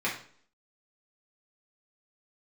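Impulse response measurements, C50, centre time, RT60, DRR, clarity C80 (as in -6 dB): 7.0 dB, 27 ms, 0.55 s, -6.5 dB, 12.0 dB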